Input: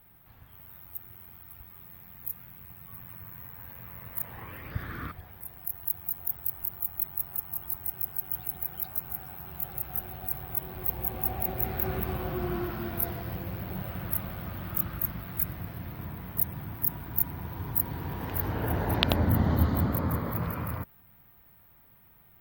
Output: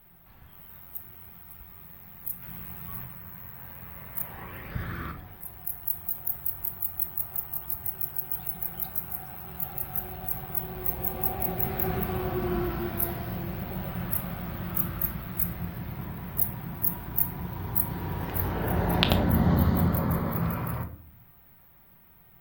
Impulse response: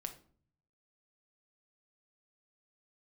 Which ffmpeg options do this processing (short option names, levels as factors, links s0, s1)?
-filter_complex "[0:a]asettb=1/sr,asplit=3[s0][s1][s2];[s0]atrim=end=2.424[s3];[s1]atrim=start=2.42:end=3.05,asetpts=PTS-STARTPTS,afade=t=in:d=0.004:c=qsin,afade=t=out:st=0.626:d=0.004:c=qsin,acontrast=53[s4];[s2]atrim=start=3.046[s5];[s3][s4]acrossfade=d=0.004:c1=hsin:c2=qsin[s6];[s6][s5]acrossfade=d=0.004:c1=qsin:c2=hsin[s7];[1:a]atrim=start_sample=2205[s8];[s7][s8]afir=irnorm=-1:irlink=0,volume=1.68"